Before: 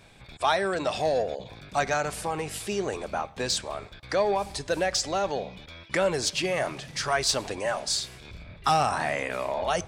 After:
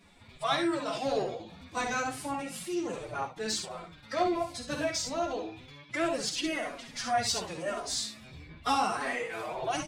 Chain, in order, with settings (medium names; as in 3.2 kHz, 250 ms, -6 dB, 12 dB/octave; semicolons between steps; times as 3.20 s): formant-preserving pitch shift +9.5 st; early reflections 50 ms -9.5 dB, 68 ms -7 dB; chorus voices 2, 0.31 Hz, delay 10 ms, depth 4.5 ms; trim -2.5 dB